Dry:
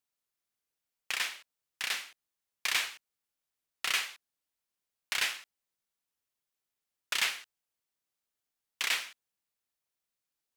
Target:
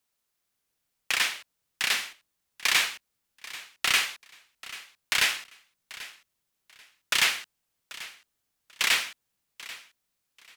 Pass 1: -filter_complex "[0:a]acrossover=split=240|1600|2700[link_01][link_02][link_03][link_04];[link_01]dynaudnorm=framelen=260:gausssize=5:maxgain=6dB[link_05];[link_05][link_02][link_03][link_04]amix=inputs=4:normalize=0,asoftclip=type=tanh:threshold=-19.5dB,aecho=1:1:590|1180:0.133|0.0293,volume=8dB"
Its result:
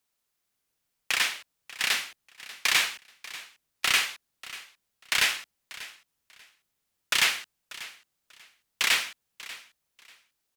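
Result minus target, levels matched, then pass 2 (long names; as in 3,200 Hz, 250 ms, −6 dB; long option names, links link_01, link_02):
echo 198 ms early
-filter_complex "[0:a]acrossover=split=240|1600|2700[link_01][link_02][link_03][link_04];[link_01]dynaudnorm=framelen=260:gausssize=5:maxgain=6dB[link_05];[link_05][link_02][link_03][link_04]amix=inputs=4:normalize=0,asoftclip=type=tanh:threshold=-19.5dB,aecho=1:1:788|1576:0.133|0.0293,volume=8dB"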